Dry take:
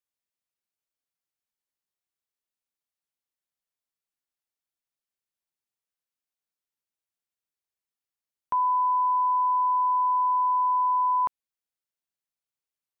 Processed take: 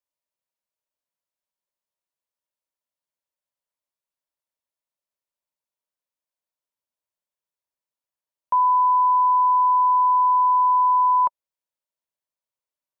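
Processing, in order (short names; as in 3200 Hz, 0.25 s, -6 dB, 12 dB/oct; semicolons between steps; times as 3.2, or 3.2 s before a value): small resonant body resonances 590/950 Hz, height 11 dB, ringing for 25 ms; gain -3 dB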